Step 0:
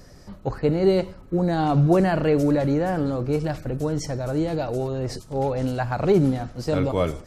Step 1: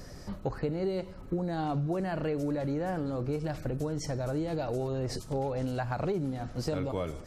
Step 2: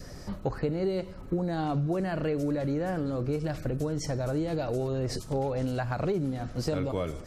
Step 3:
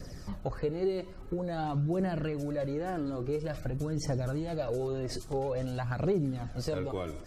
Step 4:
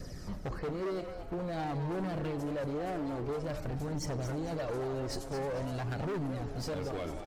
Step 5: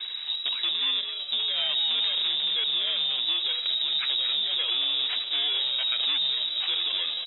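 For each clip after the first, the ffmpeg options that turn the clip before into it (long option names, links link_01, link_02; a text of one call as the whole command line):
ffmpeg -i in.wav -af "acompressor=threshold=-31dB:ratio=6,volume=1.5dB" out.wav
ffmpeg -i in.wav -af "adynamicequalizer=threshold=0.00282:dfrequency=850:dqfactor=3.2:tfrequency=850:tqfactor=3.2:attack=5:release=100:ratio=0.375:range=2.5:mode=cutabove:tftype=bell,volume=2.5dB" out.wav
ffmpeg -i in.wav -af "aphaser=in_gain=1:out_gain=1:delay=3.2:decay=0.42:speed=0.49:type=triangular,volume=-4dB" out.wav
ffmpeg -i in.wav -filter_complex "[0:a]volume=33dB,asoftclip=hard,volume=-33dB,asplit=5[link_01][link_02][link_03][link_04][link_05];[link_02]adelay=222,afreqshift=150,volume=-10dB[link_06];[link_03]adelay=444,afreqshift=300,volume=-19.1dB[link_07];[link_04]adelay=666,afreqshift=450,volume=-28.2dB[link_08];[link_05]adelay=888,afreqshift=600,volume=-37.4dB[link_09];[link_01][link_06][link_07][link_08][link_09]amix=inputs=5:normalize=0" out.wav
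ffmpeg -i in.wav -af "acrusher=samples=11:mix=1:aa=0.000001,lowpass=frequency=3300:width_type=q:width=0.5098,lowpass=frequency=3300:width_type=q:width=0.6013,lowpass=frequency=3300:width_type=q:width=0.9,lowpass=frequency=3300:width_type=q:width=2.563,afreqshift=-3900,volume=8.5dB" out.wav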